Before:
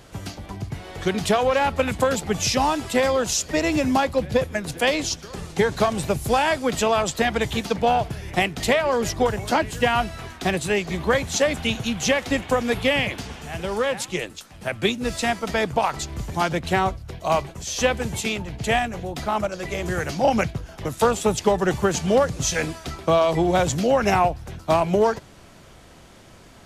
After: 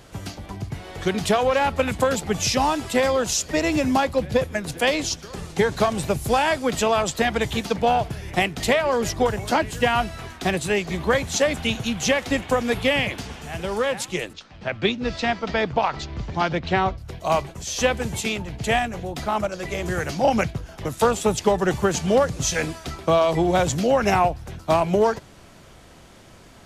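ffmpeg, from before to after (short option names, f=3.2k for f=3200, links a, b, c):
-filter_complex "[0:a]asettb=1/sr,asplit=3[a][b][c];[a]atrim=end=14.334[d];[b]atrim=start=14.33:end=16.98,asetpts=PTS-STARTPTS,afade=t=in:d=0.004:c=qsin,afade=t=out:st=2.646:d=0.004:c=qsin,lowpass=f=5.1k:w=0.5412,lowpass=f=5.1k:w=1.3066[e];[c]atrim=start=16.976[f];[d][e]acrossfade=d=0.004:c1=hsin:c2=qsin[g];[g][f]acrossfade=d=0.004:c1=qsin:c2=hsin"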